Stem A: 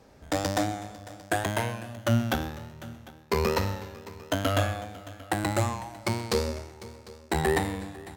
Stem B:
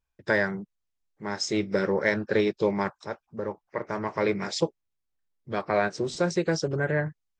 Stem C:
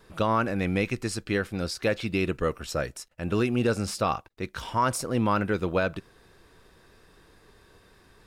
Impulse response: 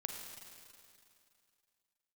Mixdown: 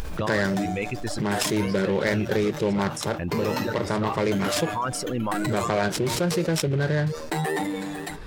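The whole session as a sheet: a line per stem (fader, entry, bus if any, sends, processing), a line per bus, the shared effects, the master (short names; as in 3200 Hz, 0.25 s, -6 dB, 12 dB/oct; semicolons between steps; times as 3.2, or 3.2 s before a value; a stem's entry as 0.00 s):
-15.5 dB, 0.00 s, bus A, no send, HPF 140 Hz 24 dB/oct; comb 6.7 ms, depth 83%; AGC gain up to 11.5 dB
-4.0 dB, 0.00 s, no bus, no send, low shelf 180 Hz +10.5 dB; upward compressor, threshold -26 dBFS; noise-modulated delay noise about 2200 Hz, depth 0.032 ms
-13.5 dB, 0.00 s, bus A, no send, high shelf 6700 Hz -11 dB
bus A: 0.0 dB, reverb removal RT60 1.3 s; limiter -27 dBFS, peak gain reduction 9.5 dB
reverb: off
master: fast leveller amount 70%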